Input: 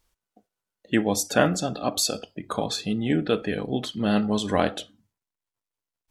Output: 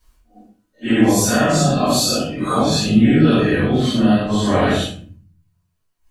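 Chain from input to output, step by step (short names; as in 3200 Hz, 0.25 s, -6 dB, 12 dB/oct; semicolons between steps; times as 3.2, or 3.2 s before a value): phase scrambler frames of 0.2 s; 3.61–4.52 compressor, threshold -26 dBFS, peak gain reduction 8 dB; limiter -19.5 dBFS, peak gain reduction 10 dB; reverb RT60 0.40 s, pre-delay 3 ms, DRR -10.5 dB; gain +1 dB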